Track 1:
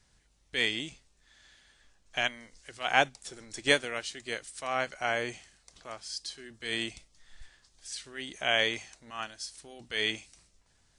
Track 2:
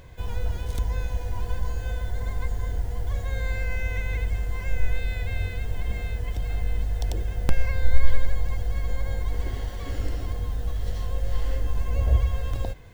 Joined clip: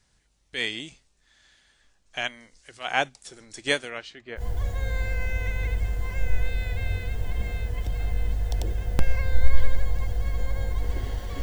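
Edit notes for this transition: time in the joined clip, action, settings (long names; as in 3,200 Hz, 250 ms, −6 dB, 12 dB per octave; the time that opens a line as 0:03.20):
track 1
0:03.89–0:04.43: low-pass filter 5,900 Hz → 1,300 Hz
0:04.39: continue with track 2 from 0:02.89, crossfade 0.08 s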